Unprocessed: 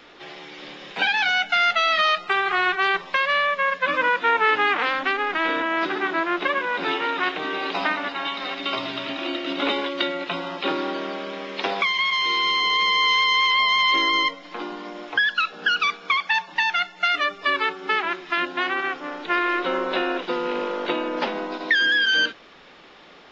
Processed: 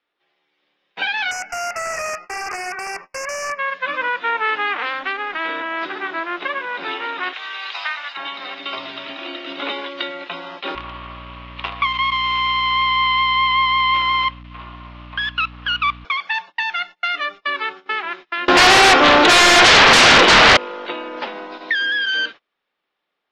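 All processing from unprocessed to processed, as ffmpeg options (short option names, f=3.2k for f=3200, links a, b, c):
-filter_complex "[0:a]asettb=1/sr,asplit=3[a][b][c];[a]atrim=end=1.314[d];[b]atrim=start=1.31:end=3.59,asetpts=PTS-STARTPTS,afade=t=in:d=0.004:c=qsin,afade=t=out:st=2.276:d=0.004:c=qsin,aeval=exprs='(mod(6.31*val(0)+1,2)-1)/6.31':c=same,asuperstop=centerf=3600:order=8:qfactor=1.6[e];[c]atrim=start=3.586[f];[d][e]acrossfade=d=0.004:c1=hsin:c2=qsin[g];[g][f]acrossfade=d=0.004:c1=qsin:c2=hsin,asettb=1/sr,asplit=3[h][i][j];[h]atrim=end=7.334[k];[i]atrim=start=7.33:end=8.17,asetpts=PTS-STARTPTS,afade=t=in:d=0.004:c=qsin,afade=t=out:st=0.836:d=0.004:c=qsin,highpass=1.1k,aemphasis=mode=production:type=50kf[l];[j]atrim=start=8.166[m];[k][l]acrossfade=d=0.004:c1=hsin:c2=qsin[n];[n][m]acrossfade=d=0.004:c1=qsin:c2=hsin,asettb=1/sr,asplit=3[o][p][q];[o]atrim=end=10.754[r];[p]atrim=start=10.75:end=16.05,asetpts=PTS-STARTPTS,afade=t=in:d=0.004:c=qsin,afade=t=out:st=5.296:d=0.004:c=qsin,acrusher=bits=4:dc=4:mix=0:aa=0.000001,highpass=440,equalizer=f=450:t=q:w=4:g=-9,equalizer=f=770:t=q:w=4:g=-6,equalizer=f=1.1k:t=q:w=4:g=10,equalizer=f=1.6k:t=q:w=4:g=-6,equalizer=f=2.8k:t=q:w=4:g=4,lowpass=f=3.5k:w=0.5412,lowpass=f=3.5k:w=1.3066,aeval=exprs='val(0)+0.0355*(sin(2*PI*60*n/s)+sin(2*PI*2*60*n/s)/2+sin(2*PI*3*60*n/s)/3+sin(2*PI*4*60*n/s)/4+sin(2*PI*5*60*n/s)/5)':c=same[s];[q]atrim=start=16.046[t];[r][s]acrossfade=d=0.004:c1=hsin:c2=qsin[u];[u][t]acrossfade=d=0.004:c1=qsin:c2=hsin,asettb=1/sr,asplit=3[v][w][x];[v]atrim=end=18.484[y];[w]atrim=start=18.48:end=20.57,asetpts=PTS-STARTPTS,afade=t=in:d=0.004:c=qsin,afade=t=out:st=2.086:d=0.004:c=qsin,equalizer=f=510:t=o:w=2.3:g=2.5,acontrast=31,aeval=exprs='0.596*sin(PI/2*8.91*val(0)/0.596)':c=same[z];[x]atrim=start=20.566[aa];[y][z]acrossfade=d=0.004:c1=hsin:c2=qsin[ab];[ab][aa]acrossfade=d=0.004:c1=qsin:c2=hsin,agate=range=-28dB:threshold=-32dB:ratio=16:detection=peak,lowpass=4.8k,lowshelf=f=410:g=-9"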